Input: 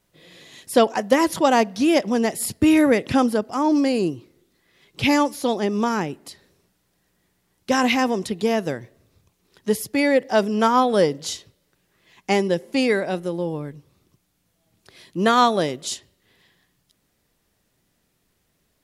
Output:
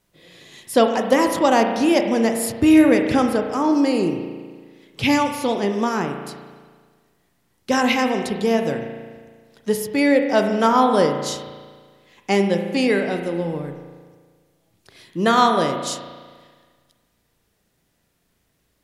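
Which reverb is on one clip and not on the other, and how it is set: spring tank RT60 1.6 s, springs 35 ms, chirp 65 ms, DRR 5 dB

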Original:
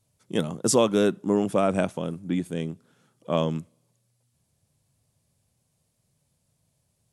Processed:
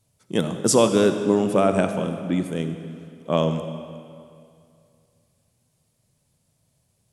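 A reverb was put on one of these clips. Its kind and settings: algorithmic reverb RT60 2.4 s, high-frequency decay 0.85×, pre-delay 15 ms, DRR 7.5 dB; trim +3 dB

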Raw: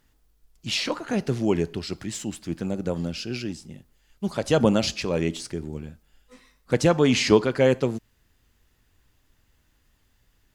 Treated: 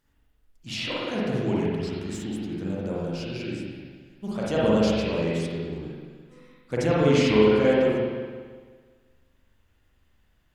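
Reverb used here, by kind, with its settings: spring tank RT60 1.6 s, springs 42/56 ms, chirp 60 ms, DRR -7 dB; trim -8.5 dB

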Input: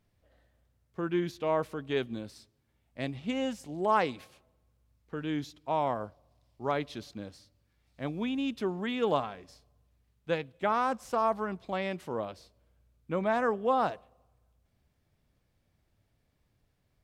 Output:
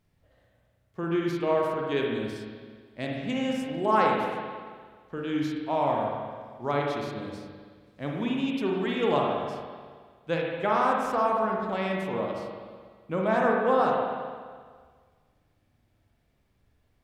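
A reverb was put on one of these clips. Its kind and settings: spring tank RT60 1.7 s, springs 42/55 ms, chirp 40 ms, DRR -1.5 dB; trim +1 dB

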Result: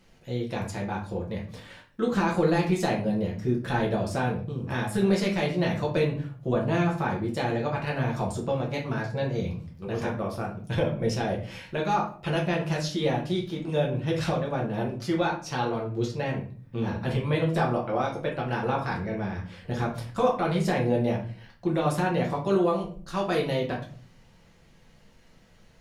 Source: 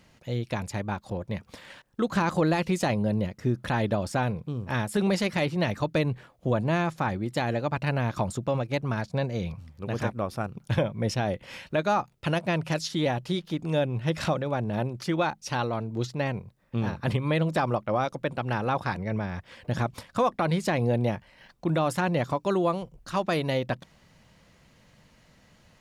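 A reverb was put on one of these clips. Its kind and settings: simulated room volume 35 m³, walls mixed, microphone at 0.79 m; trim -5 dB

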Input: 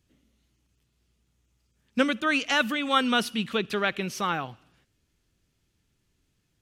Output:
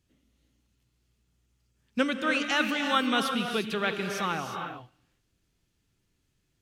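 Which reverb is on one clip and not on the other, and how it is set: gated-style reverb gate 380 ms rising, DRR 4.5 dB; trim -3 dB

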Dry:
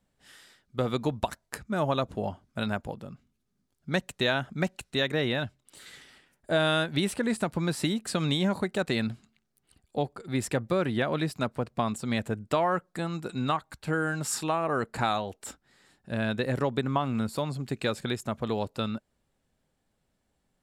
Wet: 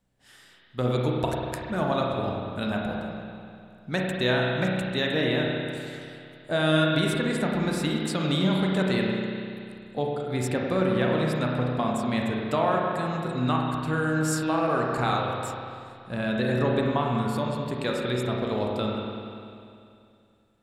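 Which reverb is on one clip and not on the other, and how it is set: spring tank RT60 2.5 s, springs 32/48 ms, chirp 20 ms, DRR -1.5 dB; trim -1 dB

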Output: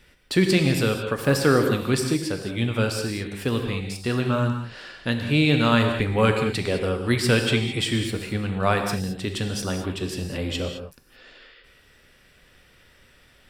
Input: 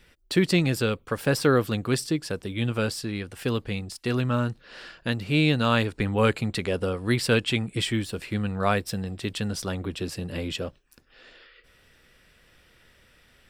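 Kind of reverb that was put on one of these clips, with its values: gated-style reverb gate 240 ms flat, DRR 4 dB; trim +1.5 dB

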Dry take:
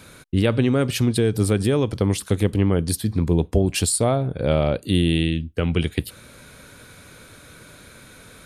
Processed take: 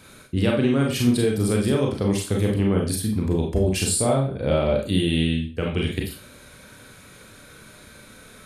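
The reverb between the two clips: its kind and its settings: Schroeder reverb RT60 0.34 s, combs from 29 ms, DRR -0.5 dB; trim -4 dB

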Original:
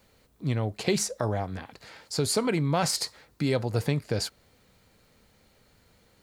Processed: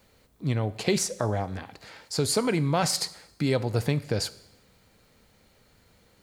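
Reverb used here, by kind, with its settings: Schroeder reverb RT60 0.88 s, combs from 30 ms, DRR 17 dB; trim +1 dB

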